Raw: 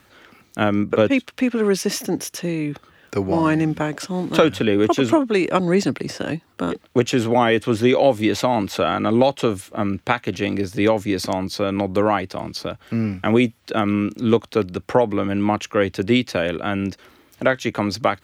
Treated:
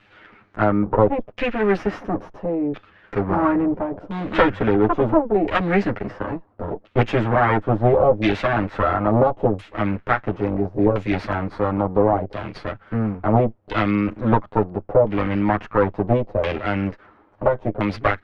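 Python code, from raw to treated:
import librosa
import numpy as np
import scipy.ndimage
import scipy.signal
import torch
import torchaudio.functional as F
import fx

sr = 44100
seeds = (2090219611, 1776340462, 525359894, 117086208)

y = fx.lower_of_two(x, sr, delay_ms=9.7)
y = fx.filter_lfo_lowpass(y, sr, shape='saw_down', hz=0.73, low_hz=560.0, high_hz=2900.0, q=1.6)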